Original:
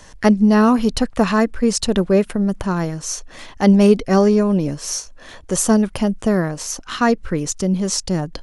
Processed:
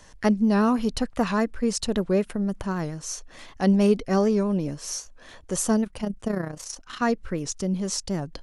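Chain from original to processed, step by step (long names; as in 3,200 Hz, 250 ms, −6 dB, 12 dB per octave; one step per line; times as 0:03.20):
0:05.84–0:07.02: amplitude modulation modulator 30 Hz, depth 50%
wow of a warped record 78 rpm, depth 100 cents
level −7.5 dB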